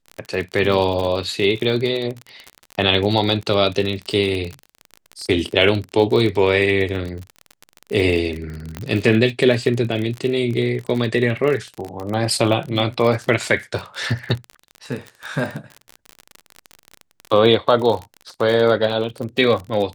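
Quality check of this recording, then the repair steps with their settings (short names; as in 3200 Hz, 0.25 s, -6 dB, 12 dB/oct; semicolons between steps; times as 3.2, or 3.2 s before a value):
crackle 36/s -24 dBFS
8.77 pop -13 dBFS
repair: de-click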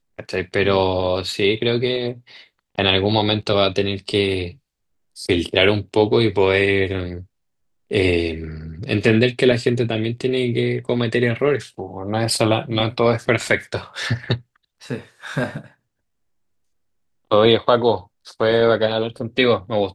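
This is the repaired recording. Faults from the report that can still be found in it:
none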